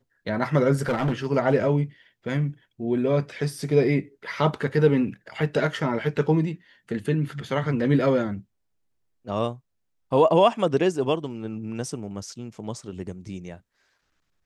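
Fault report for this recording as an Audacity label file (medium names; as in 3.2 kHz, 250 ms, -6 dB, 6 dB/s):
0.860000	1.320000	clipped -19.5 dBFS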